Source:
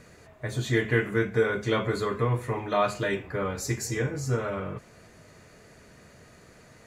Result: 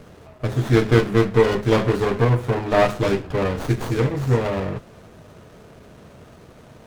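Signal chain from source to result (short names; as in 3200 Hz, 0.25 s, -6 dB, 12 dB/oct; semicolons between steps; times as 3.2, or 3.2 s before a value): running maximum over 17 samples; gain +8.5 dB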